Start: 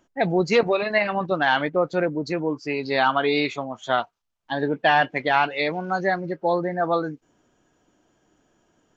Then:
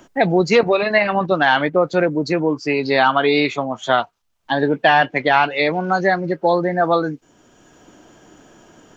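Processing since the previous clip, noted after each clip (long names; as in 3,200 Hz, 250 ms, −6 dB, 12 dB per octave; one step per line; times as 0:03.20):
multiband upward and downward compressor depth 40%
level +5.5 dB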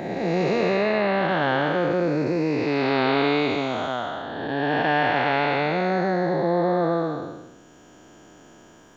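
spectrum smeared in time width 502 ms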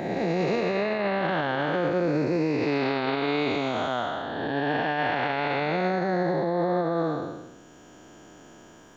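brickwall limiter −17 dBFS, peak gain reduction 8.5 dB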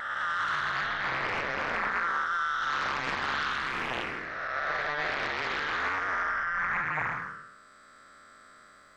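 neighbouring bands swapped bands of 1,000 Hz
highs frequency-modulated by the lows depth 0.78 ms
level −5 dB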